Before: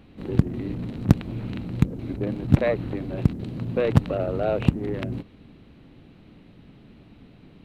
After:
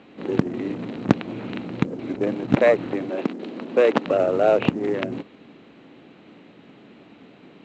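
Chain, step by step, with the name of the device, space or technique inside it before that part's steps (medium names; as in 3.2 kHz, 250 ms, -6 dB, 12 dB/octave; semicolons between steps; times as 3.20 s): 3.09–4.05 s: high-pass 220 Hz 24 dB/octave; telephone (band-pass 300–3600 Hz; trim +7.5 dB; µ-law 128 kbps 16 kHz)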